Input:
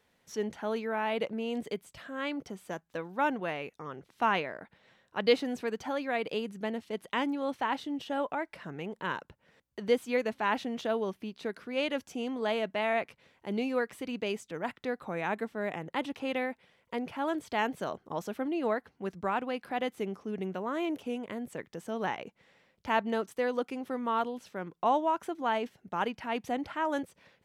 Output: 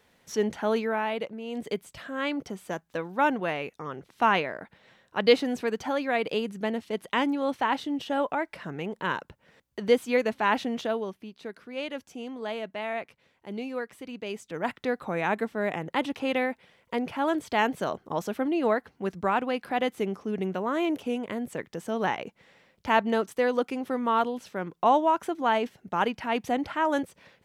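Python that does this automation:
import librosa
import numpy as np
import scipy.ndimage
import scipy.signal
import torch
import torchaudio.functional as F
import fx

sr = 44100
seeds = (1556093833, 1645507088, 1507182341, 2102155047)

y = fx.gain(x, sr, db=fx.line((0.8, 7.0), (1.4, -4.0), (1.73, 5.0), (10.74, 5.0), (11.19, -3.0), (14.23, -3.0), (14.66, 5.5)))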